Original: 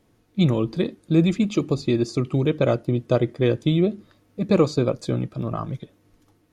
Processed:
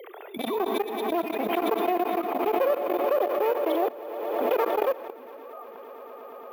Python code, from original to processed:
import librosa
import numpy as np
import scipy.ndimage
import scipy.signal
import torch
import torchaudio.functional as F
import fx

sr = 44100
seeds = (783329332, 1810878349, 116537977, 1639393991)

p1 = fx.sine_speech(x, sr)
p2 = fx.clip_asym(p1, sr, top_db=-22.0, bottom_db=-11.5)
p3 = np.repeat(scipy.signal.resample_poly(p2, 1, 3), 3)[:len(p2)]
p4 = fx.peak_eq(p3, sr, hz=730.0, db=9.5, octaves=0.82)
p5 = p4 + fx.echo_swell(p4, sr, ms=113, loudest=5, wet_db=-13.5, dry=0)
p6 = fx.rev_schroeder(p5, sr, rt60_s=1.2, comb_ms=28, drr_db=12.0)
p7 = fx.level_steps(p6, sr, step_db=20)
p8 = scipy.signal.sosfilt(scipy.signal.butter(2, 490.0, 'highpass', fs=sr, output='sos'), p7)
y = fx.pre_swell(p8, sr, db_per_s=31.0)